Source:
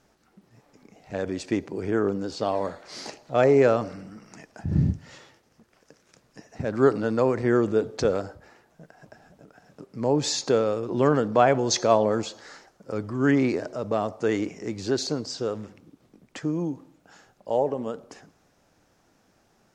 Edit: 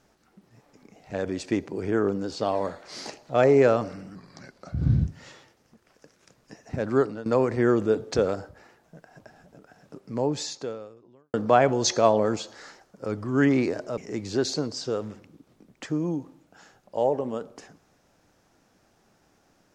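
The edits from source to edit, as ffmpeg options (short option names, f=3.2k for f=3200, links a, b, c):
-filter_complex "[0:a]asplit=6[a][b][c][d][e][f];[a]atrim=end=4.154[g];[b]atrim=start=4.15:end=4.93,asetpts=PTS-STARTPTS,asetrate=37485,aresample=44100,atrim=end_sample=40468,asetpts=PTS-STARTPTS[h];[c]atrim=start=4.926:end=7.12,asetpts=PTS-STARTPTS,afade=t=out:st=1.794:d=0.4:silence=0.16788[i];[d]atrim=start=7.12:end=11.2,asetpts=PTS-STARTPTS,afade=t=in:d=0.004:c=hsin:silence=0.16788,afade=t=out:st=2.79:d=1.29:c=qua[j];[e]atrim=start=11.2:end=13.842,asetpts=PTS-STARTPTS,afade=t=in:d=0.004:c=hsin[k];[f]atrim=start=14.508[l];[g][h]acrossfade=d=0.004:c1=hsin:c2=hsin[m];[i][j][k]concat=n=3:v=0:a=1[n];[m][n]acrossfade=d=0.004:c1=hsin:c2=hsin[o];[o][l]acrossfade=d=0.004:c1=hsin:c2=hsin"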